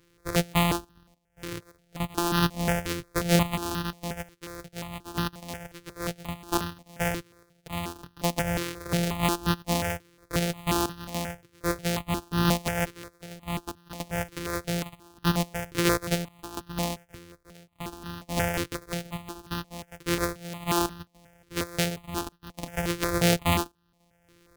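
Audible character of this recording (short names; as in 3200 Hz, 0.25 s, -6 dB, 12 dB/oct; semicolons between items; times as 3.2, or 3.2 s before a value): a buzz of ramps at a fixed pitch in blocks of 256 samples; random-step tremolo 3.5 Hz, depth 90%; notches that jump at a steady rate 5.6 Hz 200–2200 Hz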